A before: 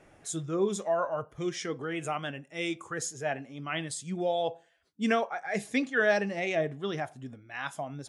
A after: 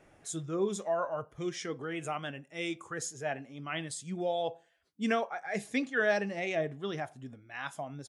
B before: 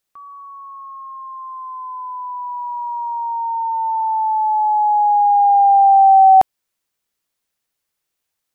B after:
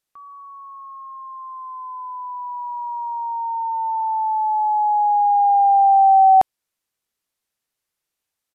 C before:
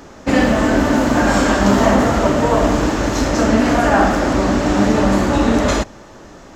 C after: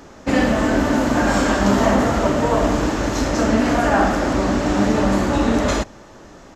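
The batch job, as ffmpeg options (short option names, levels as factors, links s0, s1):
-af "aresample=32000,aresample=44100,volume=0.708"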